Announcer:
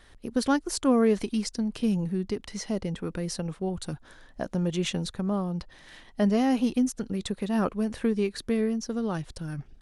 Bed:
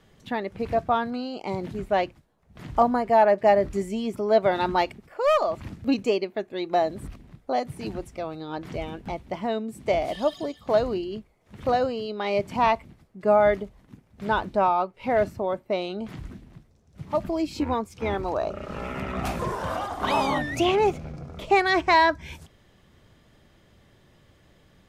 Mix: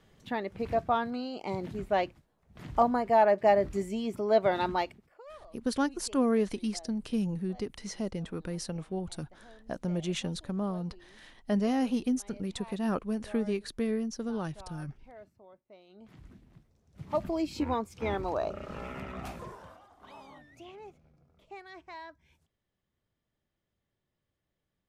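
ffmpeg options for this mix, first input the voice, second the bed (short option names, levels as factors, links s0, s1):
-filter_complex "[0:a]adelay=5300,volume=0.596[s0];[1:a]volume=9.44,afade=t=out:st=4.61:d=0.64:silence=0.0630957,afade=t=in:st=15.86:d=1.31:silence=0.0630957,afade=t=out:st=18.47:d=1.31:silence=0.0749894[s1];[s0][s1]amix=inputs=2:normalize=0"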